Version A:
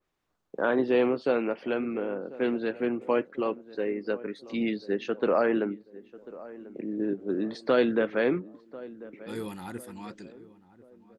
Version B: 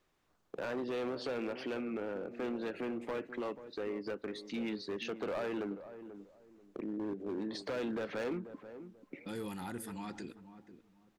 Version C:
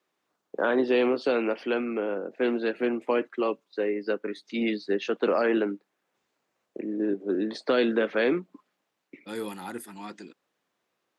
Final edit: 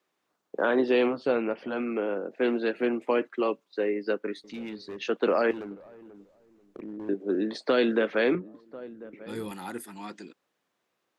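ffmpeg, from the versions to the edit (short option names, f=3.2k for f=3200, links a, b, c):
-filter_complex "[0:a]asplit=2[a][b];[1:a]asplit=2[c][d];[2:a]asplit=5[e][f][g][h][i];[e]atrim=end=1.22[j];[a]atrim=start=1.06:end=1.81[k];[f]atrim=start=1.65:end=4.442[l];[c]atrim=start=4.438:end=5.012[m];[g]atrim=start=5.008:end=5.512[n];[d]atrim=start=5.508:end=7.092[o];[h]atrim=start=7.088:end=8.352[p];[b]atrim=start=8.348:end=9.512[q];[i]atrim=start=9.508[r];[j][k]acrossfade=d=0.16:c1=tri:c2=tri[s];[s][l]acrossfade=d=0.16:c1=tri:c2=tri[t];[t][m]acrossfade=d=0.004:c1=hsin:c2=hsin[u];[u][n]acrossfade=d=0.004:c1=hsin:c2=hsin[v];[v][o]acrossfade=d=0.004:c1=hsin:c2=hsin[w];[w][p]acrossfade=d=0.004:c1=hsin:c2=hsin[x];[x][q]acrossfade=d=0.004:c1=hsin:c2=hsin[y];[y][r]acrossfade=d=0.004:c1=hsin:c2=hsin"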